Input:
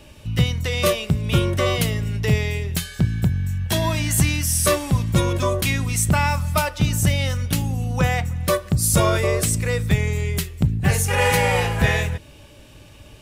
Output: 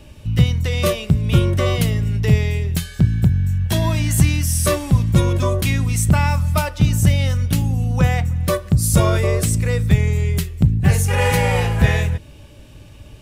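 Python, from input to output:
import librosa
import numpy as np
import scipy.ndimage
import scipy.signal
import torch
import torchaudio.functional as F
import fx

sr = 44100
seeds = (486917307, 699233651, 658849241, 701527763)

y = fx.low_shelf(x, sr, hz=280.0, db=7.5)
y = y * 10.0 ** (-1.5 / 20.0)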